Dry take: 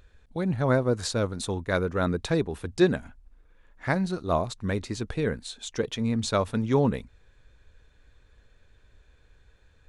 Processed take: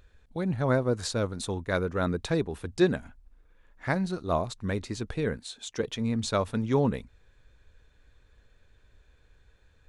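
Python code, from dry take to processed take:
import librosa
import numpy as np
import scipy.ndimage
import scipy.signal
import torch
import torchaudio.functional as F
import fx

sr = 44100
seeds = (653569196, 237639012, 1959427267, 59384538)

y = fx.highpass(x, sr, hz=110.0, slope=6, at=(5.37, 5.8))
y = y * 10.0 ** (-2.0 / 20.0)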